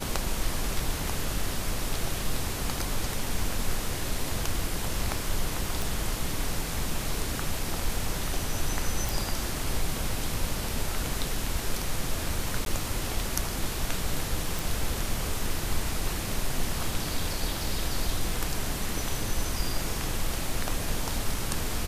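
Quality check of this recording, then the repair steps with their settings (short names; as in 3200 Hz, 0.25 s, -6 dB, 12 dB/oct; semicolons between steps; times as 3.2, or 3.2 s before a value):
5.82 pop
9.09 pop
12.65–12.66 gap 12 ms
14.59 pop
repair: de-click; interpolate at 12.65, 12 ms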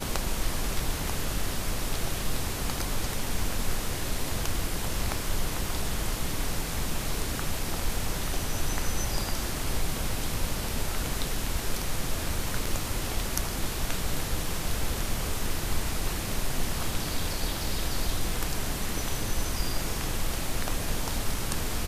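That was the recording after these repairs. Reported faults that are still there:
none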